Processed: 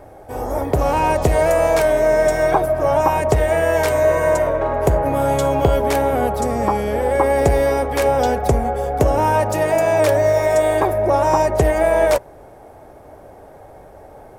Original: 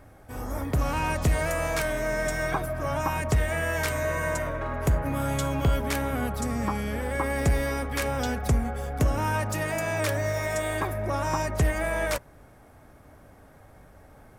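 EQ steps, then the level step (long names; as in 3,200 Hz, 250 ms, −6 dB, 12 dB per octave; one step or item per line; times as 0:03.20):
flat-topped bell 560 Hz +10.5 dB
+4.5 dB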